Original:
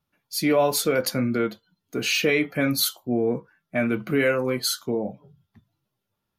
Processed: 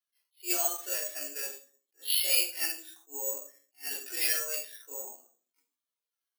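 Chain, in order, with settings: rotating-head pitch shifter +3 st; high-pass 290 Hz 24 dB/octave; differentiator; peak limiter -20 dBFS, peak gain reduction 9.5 dB; flange 0.86 Hz, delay 1.6 ms, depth 1.2 ms, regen +25%; simulated room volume 330 m³, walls furnished, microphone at 3.3 m; careless resampling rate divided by 6×, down filtered, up zero stuff; attacks held to a fixed rise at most 290 dB/s

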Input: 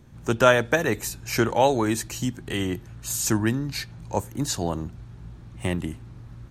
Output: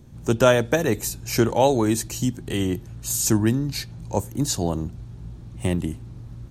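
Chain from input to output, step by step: peaking EQ 1.6 kHz -8 dB 2 oct; trim +4 dB

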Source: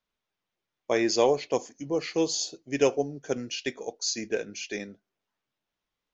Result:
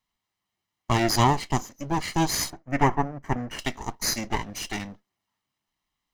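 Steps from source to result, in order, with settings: comb filter that takes the minimum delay 0.99 ms; 2.50–3.59 s: resonant high shelf 2.6 kHz -11.5 dB, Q 1.5; trim +5 dB

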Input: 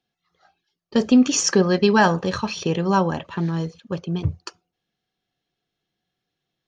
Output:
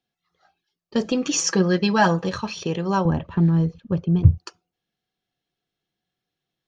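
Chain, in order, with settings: 1.04–2.29 s: comb 6.1 ms, depth 65%; 3.05–4.38 s: RIAA curve playback; trim -3 dB

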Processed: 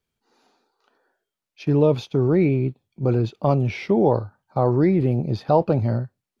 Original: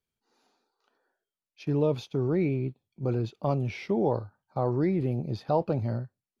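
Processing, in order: treble shelf 5.5 kHz -5 dB; trim +8 dB

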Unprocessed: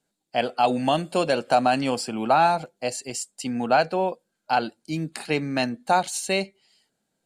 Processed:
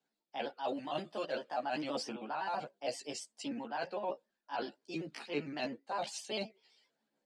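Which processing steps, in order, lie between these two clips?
pitch shift switched off and on +2 st, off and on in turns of 65 ms; three-band isolator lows -21 dB, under 210 Hz, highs -22 dB, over 6.1 kHz; reverse; compression 10:1, threshold -29 dBFS, peak gain reduction 14.5 dB; reverse; wow and flutter 21 cents; chorus voices 4, 0.54 Hz, delay 14 ms, depth 1.1 ms; trim -2 dB

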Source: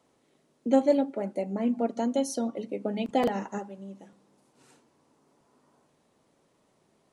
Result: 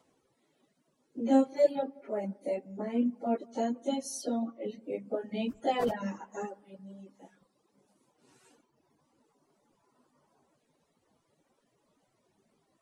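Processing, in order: plain phase-vocoder stretch 1.8×; feedback echo behind a low-pass 178 ms, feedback 52%, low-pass 2.1 kHz, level -17 dB; reverb removal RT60 0.97 s

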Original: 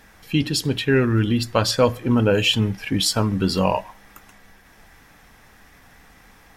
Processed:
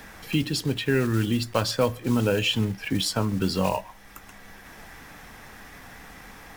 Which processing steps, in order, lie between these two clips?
block-companded coder 5-bit; three bands compressed up and down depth 40%; trim -4.5 dB

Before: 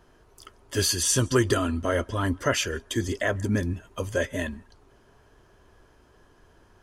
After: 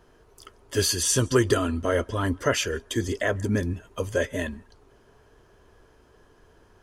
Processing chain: peaking EQ 450 Hz +5 dB 0.31 oct

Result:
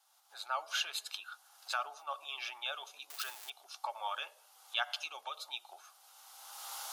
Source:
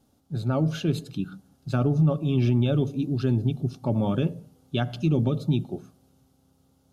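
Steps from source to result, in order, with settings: 3.10–3.50 s: zero-crossing glitches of -30 dBFS; recorder AGC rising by 29 dB/s; steep high-pass 830 Hz 36 dB/octave; trim +1 dB

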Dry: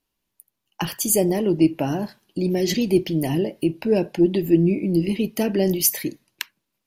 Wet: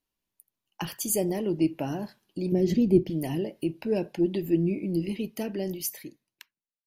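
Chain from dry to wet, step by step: fade out at the end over 1.93 s; 2.52–3.10 s: tilt shelf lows +9.5 dB, about 690 Hz; trim -7.5 dB

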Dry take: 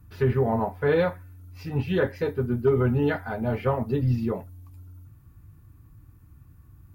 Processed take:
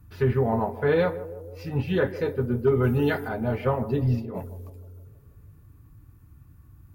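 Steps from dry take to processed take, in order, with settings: 2.82–3.27 s: treble shelf 3.5 kHz -> 4.3 kHz +11.5 dB; 4.19–4.70 s: compressor with a negative ratio -34 dBFS, ratio -1; band-passed feedback delay 157 ms, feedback 63%, band-pass 430 Hz, level -13 dB

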